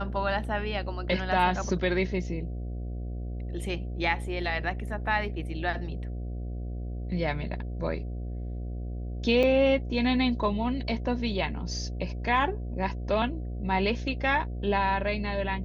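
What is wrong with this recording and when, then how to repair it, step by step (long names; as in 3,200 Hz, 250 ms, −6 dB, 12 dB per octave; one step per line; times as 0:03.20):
mains buzz 60 Hz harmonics 12 −34 dBFS
0:09.43–0:09.44: drop-out 5 ms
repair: hum removal 60 Hz, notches 12
repair the gap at 0:09.43, 5 ms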